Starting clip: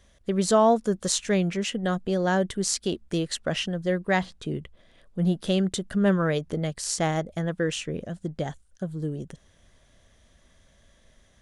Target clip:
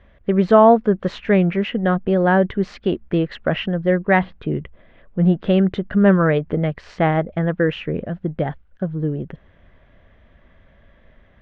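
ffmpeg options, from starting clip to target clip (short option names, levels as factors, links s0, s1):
-af "lowpass=f=2500:w=0.5412,lowpass=f=2500:w=1.3066,volume=2.51"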